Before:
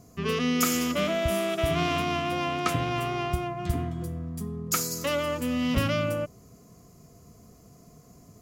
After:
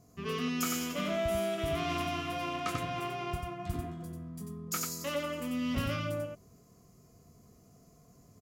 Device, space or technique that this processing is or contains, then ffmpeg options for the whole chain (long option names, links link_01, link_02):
slapback doubling: -filter_complex "[0:a]asettb=1/sr,asplit=3[link_01][link_02][link_03];[link_01]atrim=end=1.894[link_04];[link_02]atrim=start=1.89:end=2.56,asetpts=PTS-STARTPTS,afade=type=in:duration=0.004:curve=qsin,afade=type=out:start_time=0.666:duration=0.004:curve=qsin,equalizer=frequency=13000:width=0.47:gain=5[link_05];[link_03]atrim=start=2.556[link_06];[link_04][link_05]acrossfade=duration=0.004:curve1=hsin:curve2=qsin[link_07];[link_07][link_06]acrossfade=duration=0.004:curve1=qsin:curve2=hsin,asplit=3[link_08][link_09][link_10];[link_09]adelay=21,volume=-7.5dB[link_11];[link_10]adelay=92,volume=-4dB[link_12];[link_08][link_11][link_12]amix=inputs=3:normalize=0,volume=-9dB"